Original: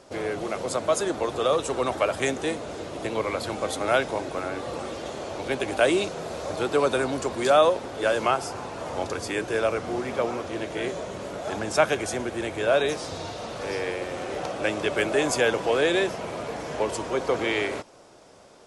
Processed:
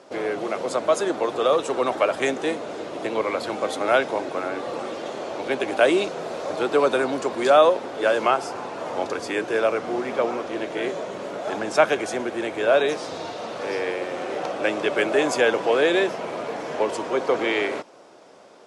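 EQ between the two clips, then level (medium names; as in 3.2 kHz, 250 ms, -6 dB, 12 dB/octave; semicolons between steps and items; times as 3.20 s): high-pass 220 Hz 12 dB/octave; low-pass 3.7 kHz 6 dB/octave; +3.5 dB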